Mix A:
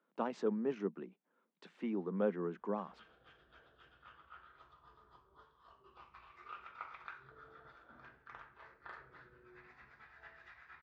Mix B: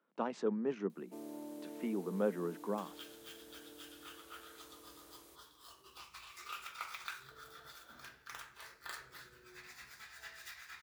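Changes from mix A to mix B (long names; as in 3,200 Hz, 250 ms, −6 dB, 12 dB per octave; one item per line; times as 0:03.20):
first sound: unmuted
second sound: remove low-pass filter 1,500 Hz 12 dB per octave
master: remove high-frequency loss of the air 63 metres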